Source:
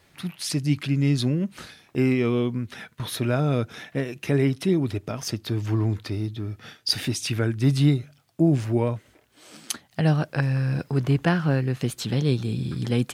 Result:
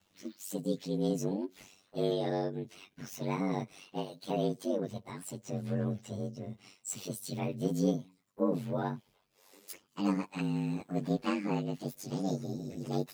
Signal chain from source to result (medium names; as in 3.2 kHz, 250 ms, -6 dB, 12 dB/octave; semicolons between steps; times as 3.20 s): frequency-domain pitch shifter +8 st; ring modulator 48 Hz; trim -6 dB